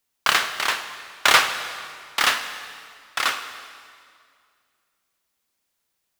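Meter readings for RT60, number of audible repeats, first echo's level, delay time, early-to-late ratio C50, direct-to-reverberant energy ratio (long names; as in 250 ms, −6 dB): 2.2 s, no echo audible, no echo audible, no echo audible, 9.0 dB, 8.0 dB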